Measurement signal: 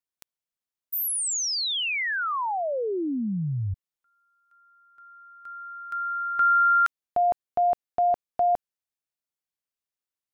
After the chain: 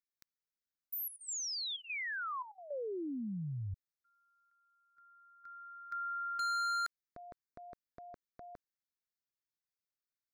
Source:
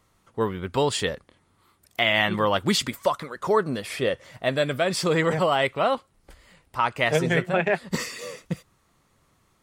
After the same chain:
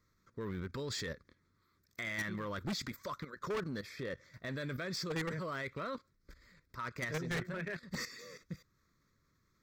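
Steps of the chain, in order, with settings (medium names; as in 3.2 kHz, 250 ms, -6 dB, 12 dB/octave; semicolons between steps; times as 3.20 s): static phaser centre 2.9 kHz, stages 6; level held to a coarse grid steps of 12 dB; hard clipper -30.5 dBFS; trim -3 dB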